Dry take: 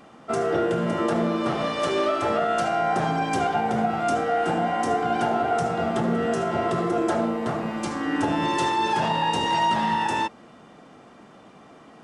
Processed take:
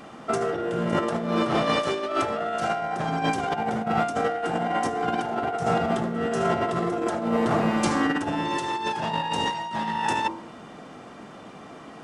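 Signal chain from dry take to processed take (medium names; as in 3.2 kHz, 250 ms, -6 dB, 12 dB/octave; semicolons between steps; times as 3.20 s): de-hum 47.26 Hz, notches 24; compressor with a negative ratio -27 dBFS, ratio -0.5; trim +2.5 dB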